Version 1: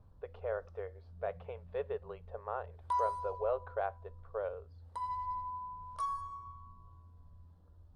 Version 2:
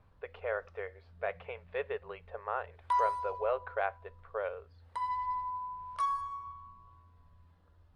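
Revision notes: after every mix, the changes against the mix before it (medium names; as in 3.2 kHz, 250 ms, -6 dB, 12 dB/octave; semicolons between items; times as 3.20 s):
background: add bass shelf 240 Hz -5 dB; master: add peaking EQ 2.2 kHz +14 dB 1.4 oct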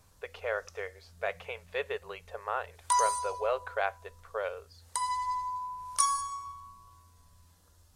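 master: remove distance through air 460 m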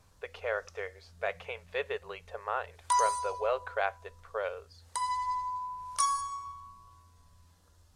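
background: add treble shelf 10 kHz -10.5 dB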